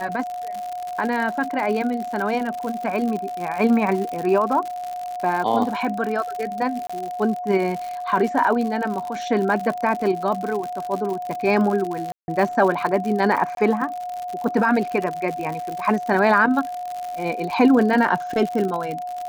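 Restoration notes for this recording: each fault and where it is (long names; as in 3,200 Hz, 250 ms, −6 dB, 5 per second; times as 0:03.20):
surface crackle 100 per second −26 dBFS
whistle 720 Hz −27 dBFS
0:06.87–0:06.89: drop-out 25 ms
0:12.12–0:12.28: drop-out 161 ms
0:13.55–0:13.57: drop-out 22 ms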